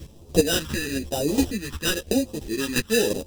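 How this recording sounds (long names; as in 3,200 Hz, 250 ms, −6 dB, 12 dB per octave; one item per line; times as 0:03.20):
aliases and images of a low sample rate 2,200 Hz, jitter 0%
phaser sweep stages 2, 1 Hz, lowest notch 600–1,600 Hz
chopped level 2.9 Hz, depth 65%, duty 15%
a shimmering, thickened sound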